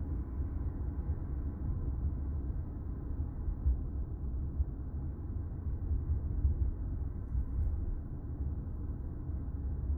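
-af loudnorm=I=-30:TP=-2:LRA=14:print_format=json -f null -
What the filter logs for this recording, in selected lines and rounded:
"input_i" : "-38.7",
"input_tp" : "-19.5",
"input_lra" : "1.8",
"input_thresh" : "-48.7",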